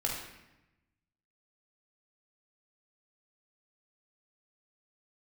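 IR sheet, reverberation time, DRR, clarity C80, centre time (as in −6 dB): 0.95 s, −2.5 dB, 5.0 dB, 53 ms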